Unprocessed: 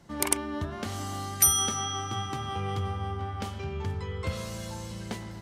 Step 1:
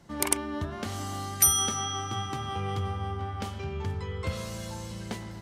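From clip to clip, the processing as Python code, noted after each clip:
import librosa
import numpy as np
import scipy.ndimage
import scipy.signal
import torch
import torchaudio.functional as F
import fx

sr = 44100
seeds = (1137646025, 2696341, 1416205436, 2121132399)

y = x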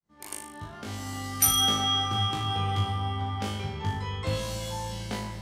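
y = fx.fade_in_head(x, sr, length_s=1.73)
y = fx.room_flutter(y, sr, wall_m=3.3, rt60_s=0.58)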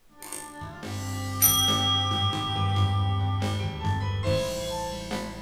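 y = fx.dmg_noise_colour(x, sr, seeds[0], colour='pink', level_db=-65.0)
y = fx.room_shoebox(y, sr, seeds[1], volume_m3=120.0, walls='furnished', distance_m=0.95)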